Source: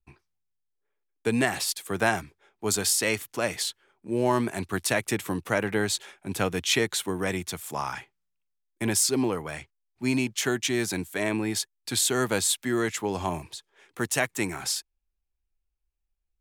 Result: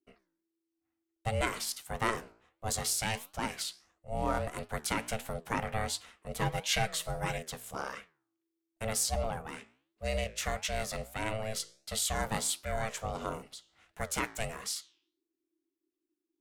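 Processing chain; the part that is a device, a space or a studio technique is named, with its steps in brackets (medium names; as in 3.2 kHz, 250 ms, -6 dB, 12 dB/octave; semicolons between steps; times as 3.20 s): alien voice (ring modulator 330 Hz; flange 1.5 Hz, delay 9.3 ms, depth 9.2 ms, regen +82%); 6.39–7.38 s: comb 6.2 ms, depth 70%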